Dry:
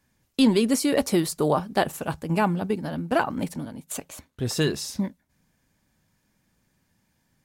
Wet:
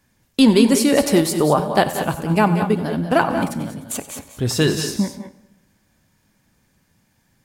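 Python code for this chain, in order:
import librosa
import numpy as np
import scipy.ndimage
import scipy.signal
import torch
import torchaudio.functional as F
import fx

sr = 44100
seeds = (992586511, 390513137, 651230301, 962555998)

p1 = x + fx.echo_multitap(x, sr, ms=(93, 180, 192, 210), db=(-16.0, -14.5, -13.0, -13.5), dry=0)
p2 = fx.rev_plate(p1, sr, seeds[0], rt60_s=1.1, hf_ratio=0.75, predelay_ms=0, drr_db=14.0)
y = p2 * librosa.db_to_amplitude(6.0)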